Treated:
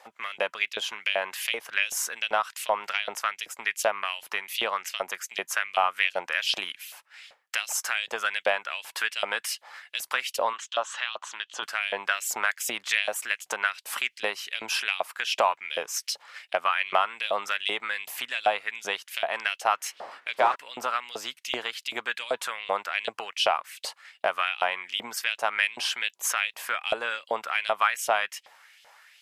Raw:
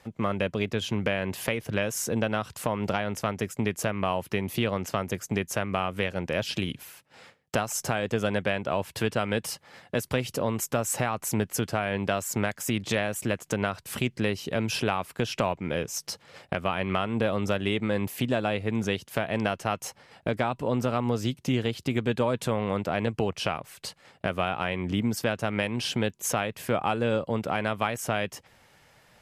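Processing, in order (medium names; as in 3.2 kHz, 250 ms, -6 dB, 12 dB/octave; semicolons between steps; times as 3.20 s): 19.71–20.54 s: wind noise 450 Hz -30 dBFS; LFO high-pass saw up 2.6 Hz 650–3600 Hz; 10.53–11.63 s: cabinet simulation 350–5700 Hz, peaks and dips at 450 Hz -7 dB, 730 Hz -5 dB, 1.1 kHz +4 dB, 2.2 kHz -9 dB, 3.3 kHz +8 dB, 5.2 kHz -9 dB; trim +2 dB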